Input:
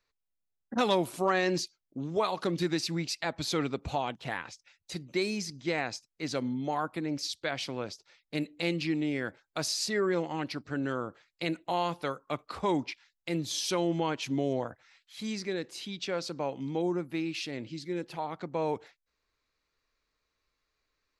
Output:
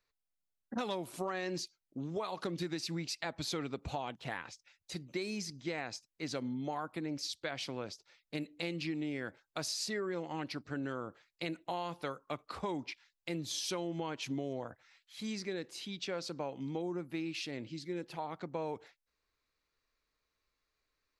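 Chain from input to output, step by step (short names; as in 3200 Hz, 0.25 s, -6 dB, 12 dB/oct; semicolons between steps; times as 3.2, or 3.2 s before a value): compressor, threshold -30 dBFS, peak gain reduction 8.5 dB; gain -3.5 dB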